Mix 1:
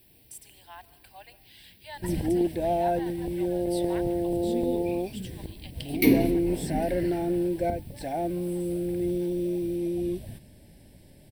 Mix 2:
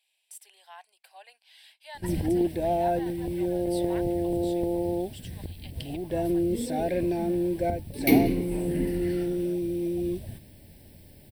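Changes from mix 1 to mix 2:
first sound: add bell 88 Hz +7 dB 0.22 oct; second sound: entry +2.05 s; reverb: off

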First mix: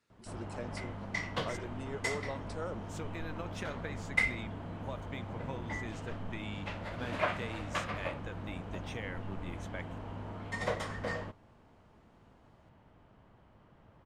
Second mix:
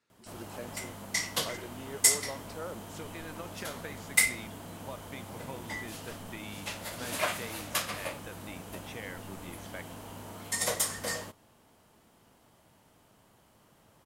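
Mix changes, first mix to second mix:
background: remove LPF 2200 Hz 12 dB/oct; master: add low shelf 99 Hz -11.5 dB

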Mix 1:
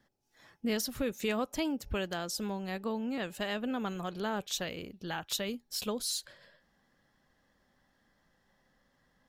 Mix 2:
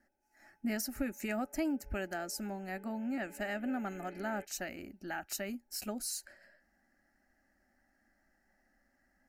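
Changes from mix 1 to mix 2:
background: remove vowel filter a; master: add fixed phaser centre 700 Hz, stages 8

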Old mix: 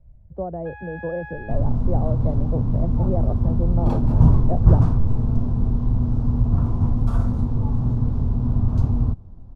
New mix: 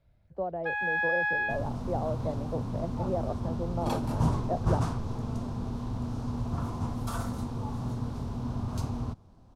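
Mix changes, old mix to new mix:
first sound +8.5 dB; master: add tilt +4 dB/oct

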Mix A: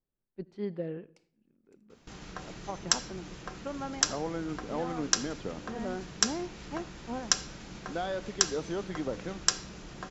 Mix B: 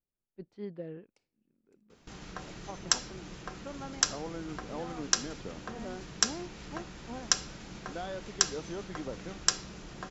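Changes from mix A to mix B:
speech -5.0 dB; reverb: off

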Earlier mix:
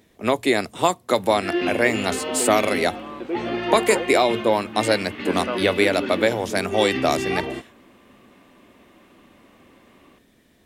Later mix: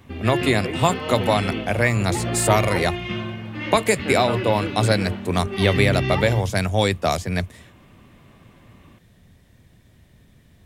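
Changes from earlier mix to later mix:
background: entry -1.20 s; master: add resonant low shelf 190 Hz +12 dB, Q 1.5

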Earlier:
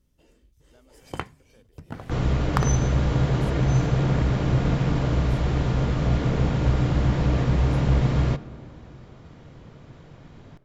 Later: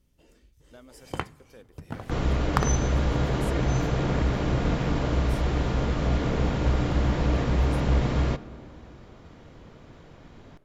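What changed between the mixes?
speech +9.0 dB; first sound: send on; second sound: add bell 130 Hz -7 dB 0.84 oct

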